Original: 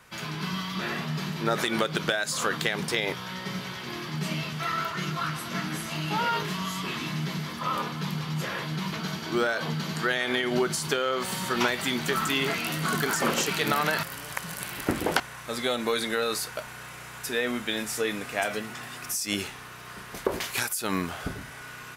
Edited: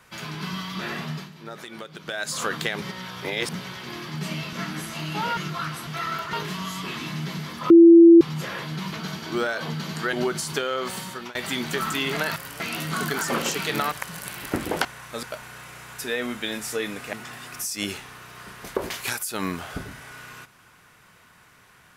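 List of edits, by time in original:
1.11–2.23 dip -12.5 dB, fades 0.18 s
2.82–3.55 reverse
4.53–4.99 swap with 5.49–6.33
7.7–8.21 bleep 336 Hz -6.5 dBFS
10.13–10.48 cut
11.24–11.7 fade out, to -24 dB
13.84–14.27 move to 12.52
15.58–16.48 cut
18.38–18.63 cut

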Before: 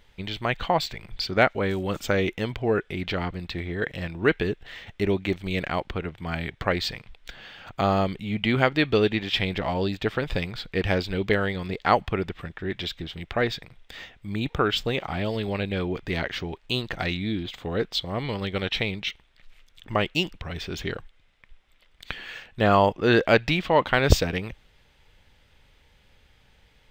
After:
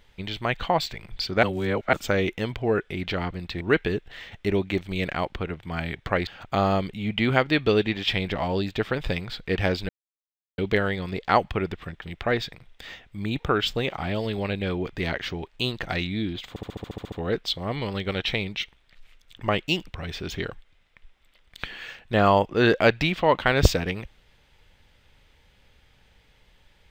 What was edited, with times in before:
1.43–1.93 reverse
3.61–4.16 cut
6.82–7.53 cut
11.15 insert silence 0.69 s
12.59–13.12 cut
17.59 stutter 0.07 s, 10 plays

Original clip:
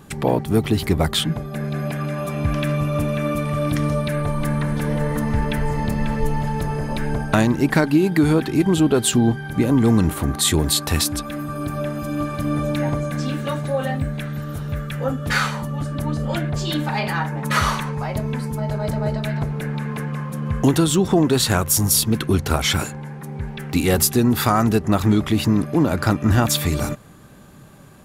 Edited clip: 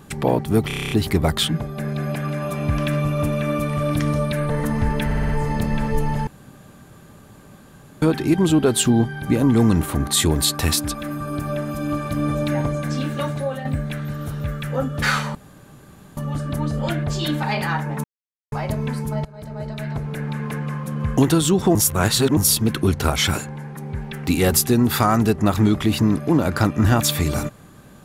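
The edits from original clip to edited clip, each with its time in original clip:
0.67 stutter 0.03 s, 9 plays
4.26–5.02 cut
5.57 stutter 0.06 s, 5 plays
6.55–8.3 room tone
13.62–13.93 fade out, to -9 dB
15.63 insert room tone 0.82 s
17.5–17.98 mute
18.71–20.24 fade in equal-power, from -23 dB
21.21–21.83 reverse

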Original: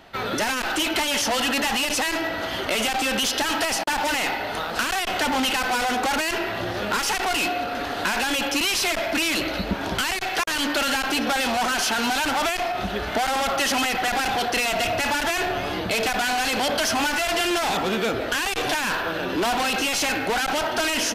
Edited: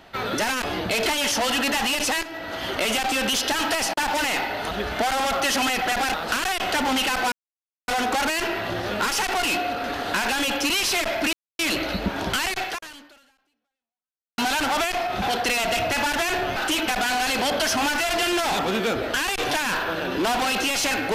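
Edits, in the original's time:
0.64–0.96 swap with 15.64–16.06
2.13–2.62 fade in, from -14 dB
5.79 insert silence 0.56 s
9.24 insert silence 0.26 s
10.27–12.03 fade out exponential
12.87–14.3 move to 4.61

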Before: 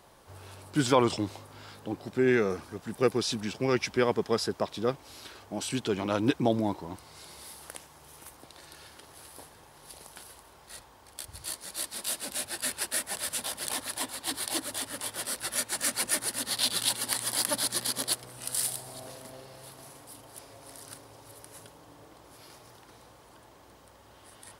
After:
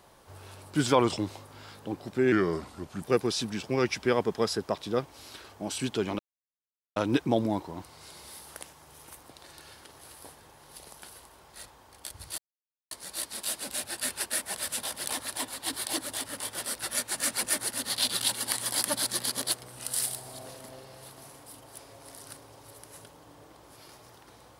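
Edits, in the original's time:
2.32–2.93 speed 87%
6.1 insert silence 0.77 s
11.52 insert silence 0.53 s

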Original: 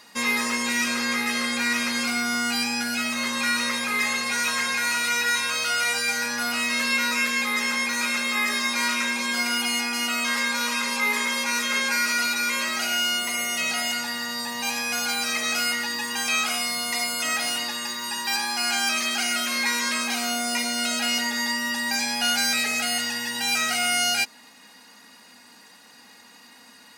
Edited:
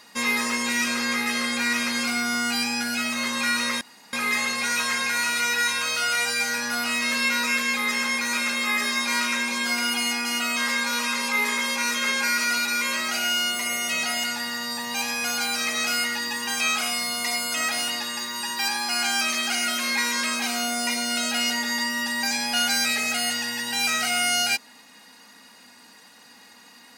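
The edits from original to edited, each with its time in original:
3.81 insert room tone 0.32 s

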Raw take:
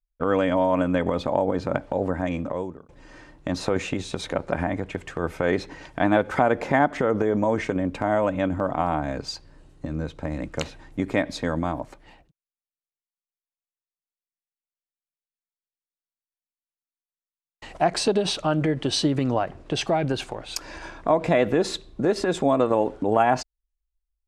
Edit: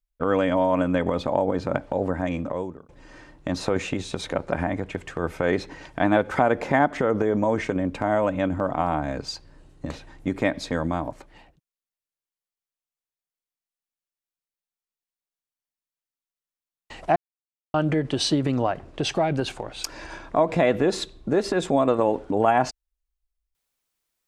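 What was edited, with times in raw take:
9.9–10.62 cut
17.88–18.46 mute

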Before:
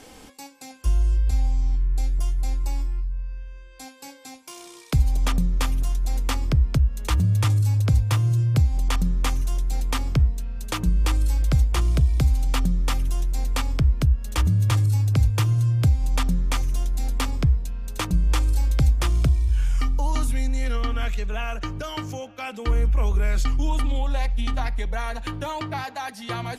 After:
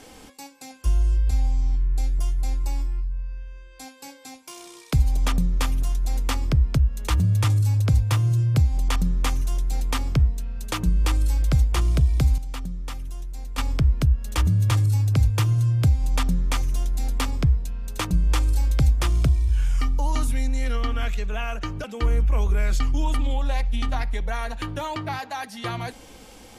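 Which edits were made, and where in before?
12.38–13.58 gain -9.5 dB
21.84–22.49 cut

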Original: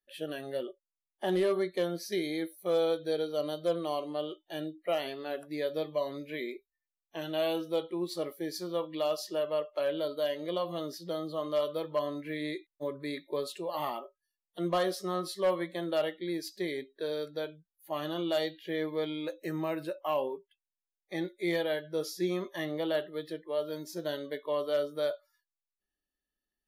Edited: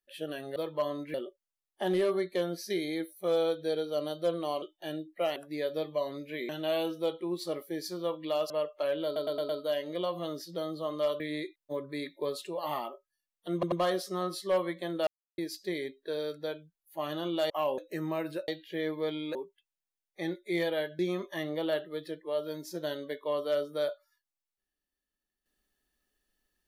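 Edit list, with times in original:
4.04–4.3 cut
5.04–5.36 cut
6.49–7.19 cut
9.2–9.47 cut
10.02 stutter 0.11 s, 5 plays
11.73–12.31 move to 0.56
14.65 stutter 0.09 s, 3 plays
16–16.31 mute
18.43–19.3 swap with 20–20.28
21.92–22.21 cut

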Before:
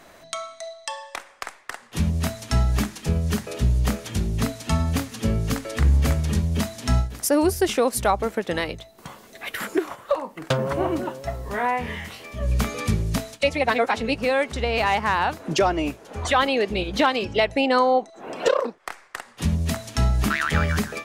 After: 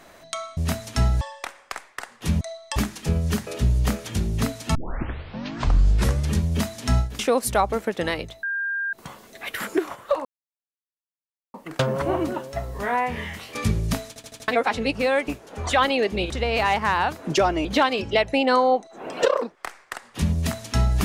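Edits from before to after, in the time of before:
0.57–0.92 swap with 2.12–2.76
4.75 tape start 1.58 s
7.19–7.69 cut
8.93 add tone 1600 Hz -23.5 dBFS 0.50 s
10.25 insert silence 1.29 s
12.26–12.78 cut
13.31 stutter in place 0.08 s, 5 plays
15.86–16.88 move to 14.51

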